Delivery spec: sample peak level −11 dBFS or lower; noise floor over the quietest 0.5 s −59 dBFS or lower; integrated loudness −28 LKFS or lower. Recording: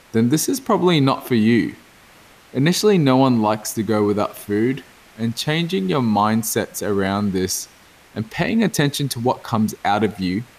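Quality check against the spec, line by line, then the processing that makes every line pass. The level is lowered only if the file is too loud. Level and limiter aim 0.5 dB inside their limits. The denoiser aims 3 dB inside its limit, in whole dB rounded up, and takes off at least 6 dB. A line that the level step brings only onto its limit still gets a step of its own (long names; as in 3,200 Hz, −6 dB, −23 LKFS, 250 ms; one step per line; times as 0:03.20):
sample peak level −5.0 dBFS: out of spec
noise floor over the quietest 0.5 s −48 dBFS: out of spec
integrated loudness −19.5 LKFS: out of spec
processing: broadband denoise 6 dB, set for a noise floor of −48 dBFS
level −9 dB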